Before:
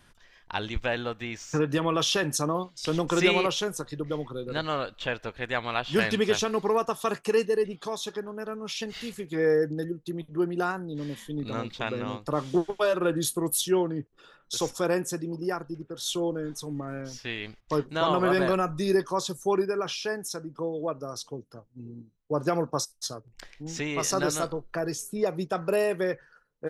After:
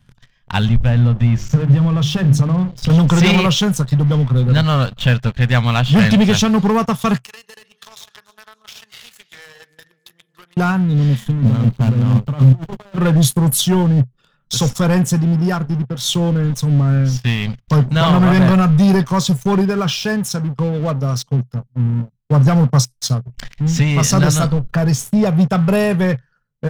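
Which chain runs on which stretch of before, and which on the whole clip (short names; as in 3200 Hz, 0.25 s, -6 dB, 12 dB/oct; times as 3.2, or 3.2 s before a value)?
0.68–2.9 tilt -2.5 dB/oct + notches 50/100/150/200/250/300/350/400 Hz + compressor 2.5:1, threshold -34 dBFS
7.24–10.57 HPF 1300 Hz + compressor 8:1, threshold -41 dBFS + echo with dull and thin repeats by turns 0.144 s, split 1000 Hz, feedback 64%, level -9 dB
11.28–12.98 median filter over 25 samples + gate -43 dBFS, range -8 dB + negative-ratio compressor -38 dBFS
whole clip: resonant low shelf 290 Hz +10 dB, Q 1.5; sample leveller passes 3; thirty-one-band EQ 125 Hz +9 dB, 315 Hz -11 dB, 3150 Hz +3 dB, 10000 Hz -3 dB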